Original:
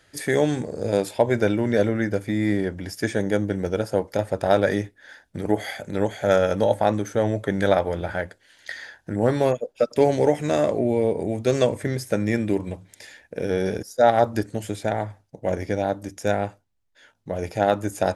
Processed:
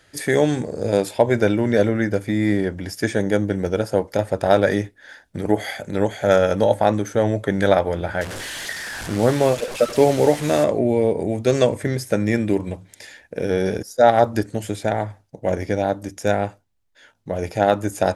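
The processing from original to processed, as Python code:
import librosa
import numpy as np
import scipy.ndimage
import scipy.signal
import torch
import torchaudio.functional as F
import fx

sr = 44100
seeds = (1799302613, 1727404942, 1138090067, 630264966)

y = fx.delta_mod(x, sr, bps=64000, step_db=-28.0, at=(8.21, 10.64))
y = F.gain(torch.from_numpy(y), 3.0).numpy()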